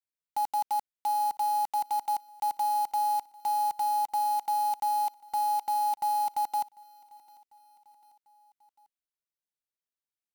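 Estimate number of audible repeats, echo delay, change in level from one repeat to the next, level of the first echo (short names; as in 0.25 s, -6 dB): 3, 0.746 s, -5.5 dB, -24.0 dB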